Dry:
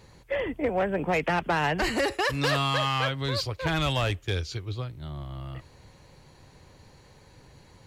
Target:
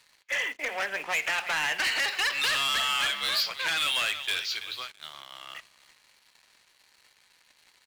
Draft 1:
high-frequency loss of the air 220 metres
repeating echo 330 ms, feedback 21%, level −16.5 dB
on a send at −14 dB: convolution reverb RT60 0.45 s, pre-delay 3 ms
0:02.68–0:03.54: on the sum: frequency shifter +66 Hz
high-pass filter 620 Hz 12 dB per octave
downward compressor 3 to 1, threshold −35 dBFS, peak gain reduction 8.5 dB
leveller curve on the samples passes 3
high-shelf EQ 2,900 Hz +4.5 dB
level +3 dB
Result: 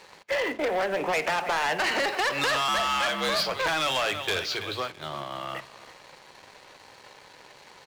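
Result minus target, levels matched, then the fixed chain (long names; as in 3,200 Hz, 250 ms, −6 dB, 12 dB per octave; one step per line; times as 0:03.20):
500 Hz band +12.5 dB
high-frequency loss of the air 220 metres
repeating echo 330 ms, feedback 21%, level −16.5 dB
on a send at −14 dB: convolution reverb RT60 0.45 s, pre-delay 3 ms
0:02.68–0:03.54: on the sum: frequency shifter +66 Hz
high-pass filter 2,100 Hz 12 dB per octave
downward compressor 3 to 1, threshold −35 dBFS, peak gain reduction 4 dB
leveller curve on the samples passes 3
high-shelf EQ 2,900 Hz +4.5 dB
level +3 dB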